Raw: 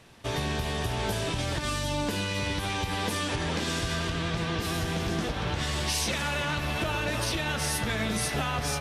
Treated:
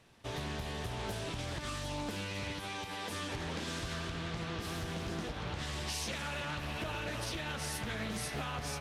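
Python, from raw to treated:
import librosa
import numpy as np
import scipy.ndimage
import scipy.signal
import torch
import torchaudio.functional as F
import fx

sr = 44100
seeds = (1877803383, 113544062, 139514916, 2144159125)

y = fx.highpass(x, sr, hz=fx.line((2.51, 120.0), (3.09, 370.0)), slope=6, at=(2.51, 3.09), fade=0.02)
y = fx.doppler_dist(y, sr, depth_ms=0.33)
y = y * 10.0 ** (-9.0 / 20.0)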